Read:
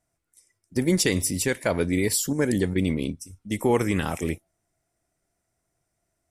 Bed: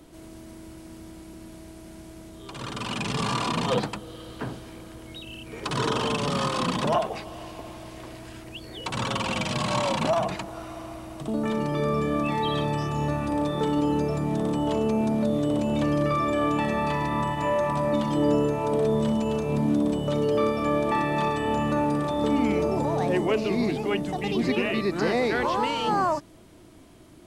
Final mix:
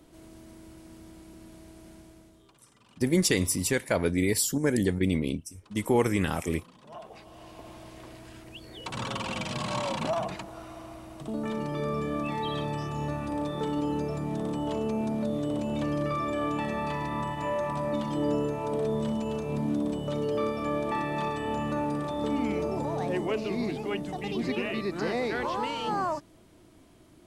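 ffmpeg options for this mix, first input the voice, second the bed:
-filter_complex "[0:a]adelay=2250,volume=-2dB[a];[1:a]volume=17.5dB,afade=t=out:st=1.89:d=0.71:silence=0.0707946,afade=t=in:st=6.86:d=0.89:silence=0.0707946[b];[a][b]amix=inputs=2:normalize=0"

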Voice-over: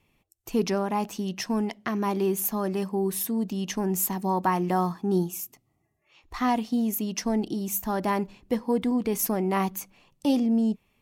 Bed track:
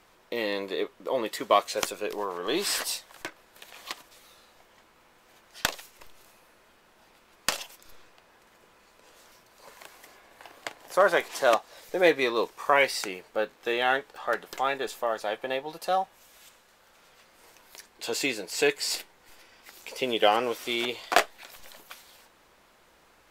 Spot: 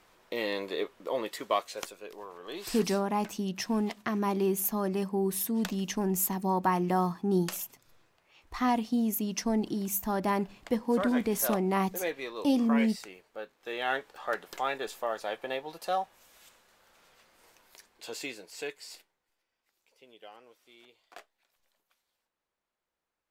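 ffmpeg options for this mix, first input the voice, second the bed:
-filter_complex "[0:a]adelay=2200,volume=-2.5dB[a];[1:a]volume=6dB,afade=t=out:st=0.98:d=0.99:silence=0.316228,afade=t=in:st=13.59:d=0.43:silence=0.375837,afade=t=out:st=16.98:d=2.32:silence=0.0595662[b];[a][b]amix=inputs=2:normalize=0"

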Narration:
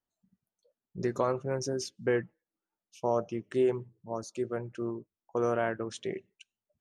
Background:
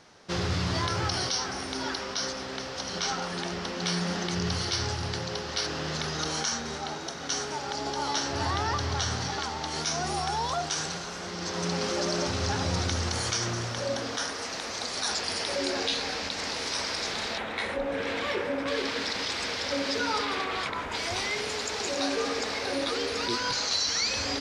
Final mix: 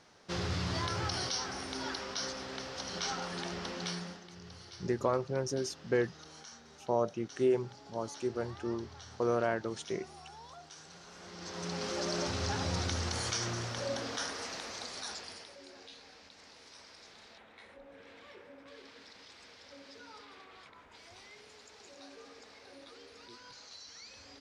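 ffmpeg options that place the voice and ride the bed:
-filter_complex "[0:a]adelay=3850,volume=-1.5dB[a];[1:a]volume=10dB,afade=t=out:st=3.73:d=0.48:silence=0.16788,afade=t=in:st=10.84:d=1.35:silence=0.158489,afade=t=out:st=14.39:d=1.15:silence=0.125893[b];[a][b]amix=inputs=2:normalize=0"

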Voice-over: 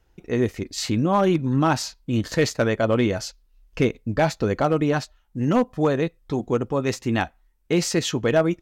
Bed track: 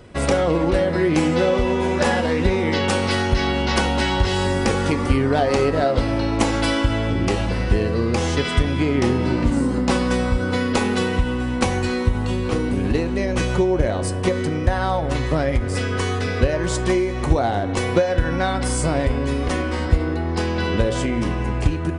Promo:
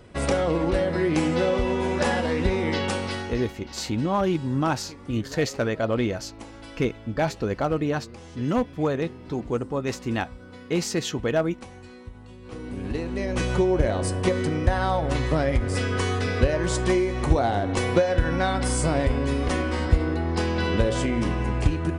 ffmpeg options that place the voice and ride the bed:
-filter_complex "[0:a]adelay=3000,volume=-4dB[a];[1:a]volume=15.5dB,afade=t=out:st=2.7:d=0.85:silence=0.125893,afade=t=in:st=12.4:d=1.28:silence=0.1[b];[a][b]amix=inputs=2:normalize=0"

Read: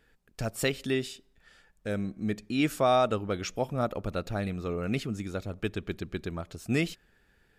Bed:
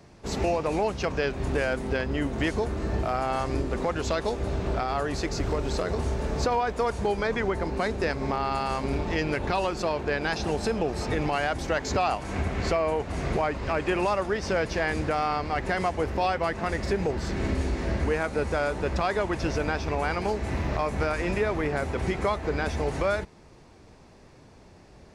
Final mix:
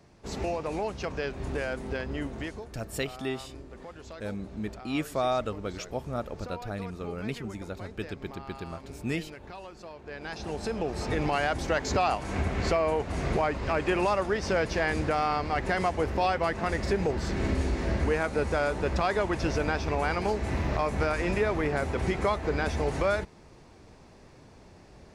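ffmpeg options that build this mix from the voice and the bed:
-filter_complex "[0:a]adelay=2350,volume=-4dB[a];[1:a]volume=11dB,afade=t=out:st=2.2:d=0.49:silence=0.266073,afade=t=in:st=10.01:d=1.31:silence=0.149624[b];[a][b]amix=inputs=2:normalize=0"

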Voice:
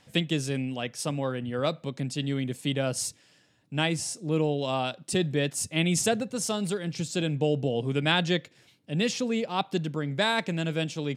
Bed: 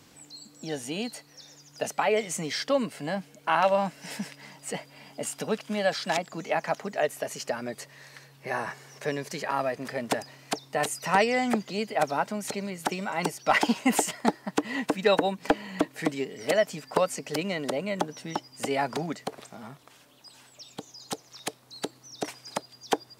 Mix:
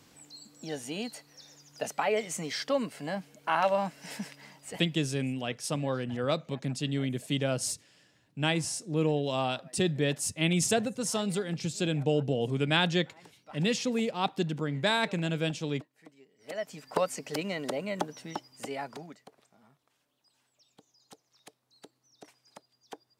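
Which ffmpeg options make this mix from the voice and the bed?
-filter_complex "[0:a]adelay=4650,volume=-1.5dB[a];[1:a]volume=20dB,afade=t=out:st=4.38:d=0.8:silence=0.0668344,afade=t=in:st=16.38:d=0.64:silence=0.0668344,afade=t=out:st=18.06:d=1.21:silence=0.158489[b];[a][b]amix=inputs=2:normalize=0"

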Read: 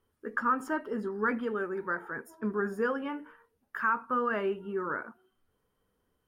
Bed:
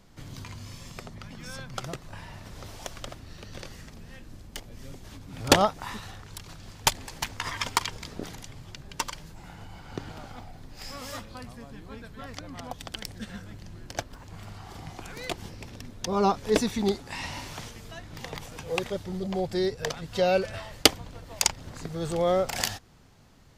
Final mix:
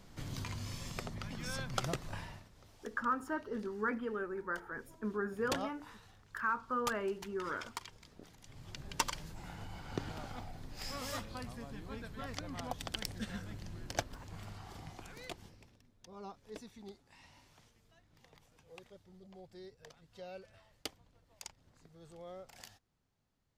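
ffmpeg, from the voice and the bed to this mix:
-filter_complex "[0:a]adelay=2600,volume=-6dB[a];[1:a]volume=15.5dB,afade=t=out:st=2.13:d=0.35:silence=0.125893,afade=t=in:st=8.39:d=0.46:silence=0.158489,afade=t=out:st=13.91:d=1.89:silence=0.0749894[b];[a][b]amix=inputs=2:normalize=0"

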